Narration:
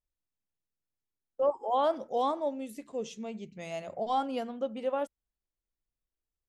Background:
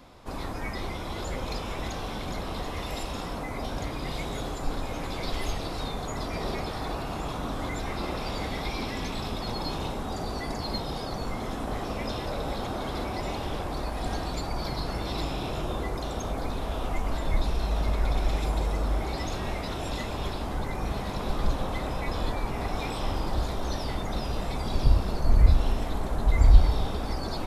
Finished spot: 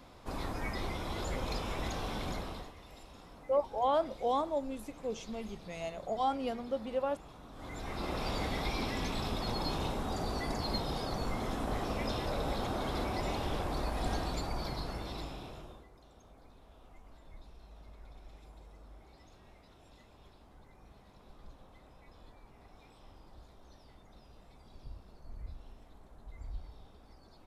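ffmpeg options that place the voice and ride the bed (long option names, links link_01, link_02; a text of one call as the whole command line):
ffmpeg -i stem1.wav -i stem2.wav -filter_complex "[0:a]adelay=2100,volume=-2dB[link_01];[1:a]volume=13dB,afade=type=out:start_time=2.27:duration=0.47:silence=0.158489,afade=type=in:start_time=7.52:duration=0.74:silence=0.149624,afade=type=out:start_time=14.09:duration=1.77:silence=0.0630957[link_02];[link_01][link_02]amix=inputs=2:normalize=0" out.wav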